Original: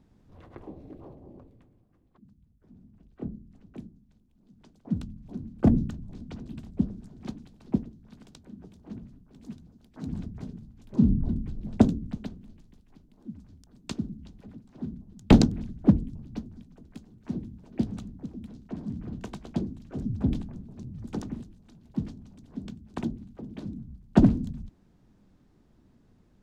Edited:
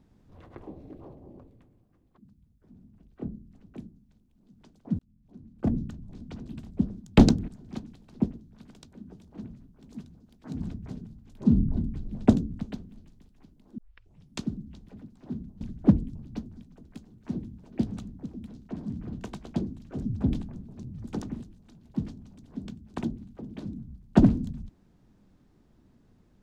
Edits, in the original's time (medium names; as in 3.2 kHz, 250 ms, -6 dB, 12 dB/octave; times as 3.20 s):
4.99–6.43 s: fade in
13.30 s: tape start 0.61 s
15.13–15.61 s: move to 7.00 s